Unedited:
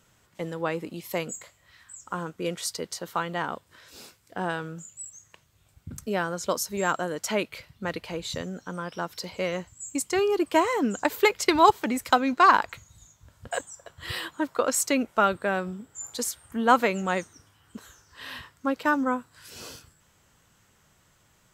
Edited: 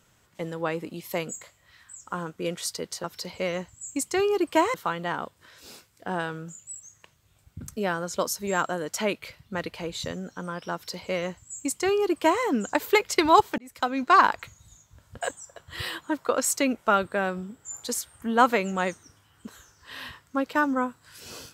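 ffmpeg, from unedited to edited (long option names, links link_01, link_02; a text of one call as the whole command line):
ffmpeg -i in.wav -filter_complex "[0:a]asplit=4[link_01][link_02][link_03][link_04];[link_01]atrim=end=3.042[link_05];[link_02]atrim=start=9.028:end=10.732[link_06];[link_03]atrim=start=3.038:end=11.88,asetpts=PTS-STARTPTS,afade=type=out:start_time=8.838:duration=0.004:curve=hsin[link_07];[link_04]atrim=start=11.88,asetpts=PTS-STARTPTS,afade=type=in:duration=0.53[link_08];[link_05][link_06]acrossfade=duration=0.004:curve1=hsin:curve2=hsin[link_09];[link_07][link_08]concat=n=2:v=0:a=1[link_10];[link_09][link_10]acrossfade=duration=0.004:curve1=hsin:curve2=hsin" out.wav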